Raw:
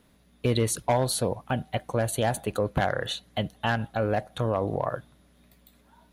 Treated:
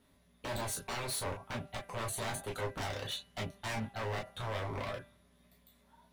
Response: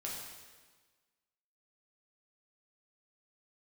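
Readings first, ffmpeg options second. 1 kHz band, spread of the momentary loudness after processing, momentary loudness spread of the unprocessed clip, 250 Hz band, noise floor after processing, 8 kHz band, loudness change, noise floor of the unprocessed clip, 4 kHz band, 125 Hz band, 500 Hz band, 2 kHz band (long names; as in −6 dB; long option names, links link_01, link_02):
−10.5 dB, 5 LU, 6 LU, −14.0 dB, −68 dBFS, −7.5 dB, −11.0 dB, −61 dBFS, −7.0 dB, −12.0 dB, −13.5 dB, −8.0 dB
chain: -filter_complex "[0:a]aeval=exprs='0.0531*(abs(mod(val(0)/0.0531+3,4)-2)-1)':channel_layout=same,bandreject=frequency=197.3:width_type=h:width=4,bandreject=frequency=394.6:width_type=h:width=4,bandreject=frequency=591.9:width_type=h:width=4,bandreject=frequency=789.2:width_type=h:width=4,bandreject=frequency=986.5:width_type=h:width=4,bandreject=frequency=1183.8:width_type=h:width=4,bandreject=frequency=1381.1:width_type=h:width=4,bandreject=frequency=1578.4:width_type=h:width=4,bandreject=frequency=1775.7:width_type=h:width=4,bandreject=frequency=1973:width_type=h:width=4,bandreject=frequency=2170.3:width_type=h:width=4,bandreject=frequency=2367.6:width_type=h:width=4,bandreject=frequency=2564.9:width_type=h:width=4,bandreject=frequency=2762.2:width_type=h:width=4,bandreject=frequency=2959.5:width_type=h:width=4[link_01];[1:a]atrim=start_sample=2205,atrim=end_sample=3087,asetrate=70560,aresample=44100[link_02];[link_01][link_02]afir=irnorm=-1:irlink=0"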